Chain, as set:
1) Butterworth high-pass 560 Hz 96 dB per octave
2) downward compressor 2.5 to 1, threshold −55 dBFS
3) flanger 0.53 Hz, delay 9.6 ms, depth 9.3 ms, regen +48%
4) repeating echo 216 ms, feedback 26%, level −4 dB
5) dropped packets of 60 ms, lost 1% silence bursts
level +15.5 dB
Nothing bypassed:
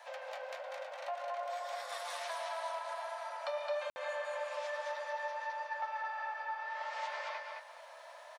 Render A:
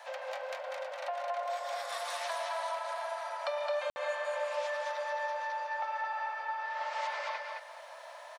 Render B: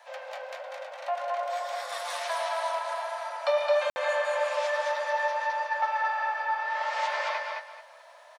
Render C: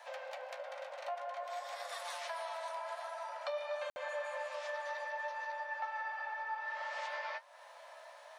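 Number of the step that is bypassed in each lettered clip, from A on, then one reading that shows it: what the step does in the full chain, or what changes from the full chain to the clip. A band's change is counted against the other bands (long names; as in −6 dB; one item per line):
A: 3, change in integrated loudness +4.0 LU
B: 2, average gain reduction 8.0 dB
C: 4, 2 kHz band +2.0 dB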